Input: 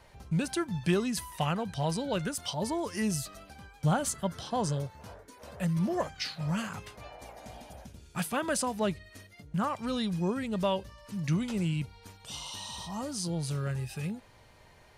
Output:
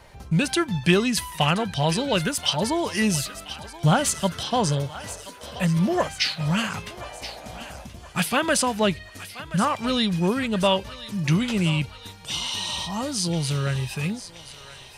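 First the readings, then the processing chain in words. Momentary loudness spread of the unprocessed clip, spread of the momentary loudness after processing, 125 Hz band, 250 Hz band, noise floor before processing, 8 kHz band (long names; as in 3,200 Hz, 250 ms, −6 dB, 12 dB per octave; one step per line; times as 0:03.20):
18 LU, 15 LU, +7.5 dB, +7.5 dB, −57 dBFS, +9.0 dB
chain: dynamic equaliser 2,900 Hz, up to +7 dB, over −52 dBFS, Q 0.93
feedback echo with a high-pass in the loop 1,027 ms, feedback 61%, high-pass 900 Hz, level −13 dB
level +7.5 dB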